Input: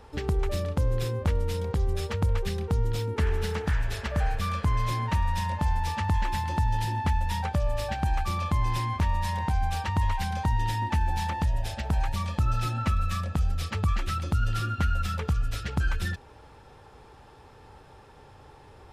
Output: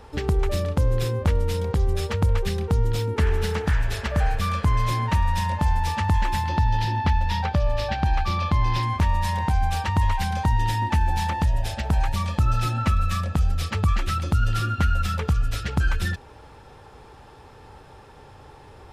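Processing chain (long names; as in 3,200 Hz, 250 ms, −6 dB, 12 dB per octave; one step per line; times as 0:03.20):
0:06.47–0:08.83: high shelf with overshoot 6,300 Hz −9 dB, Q 1.5
level +4.5 dB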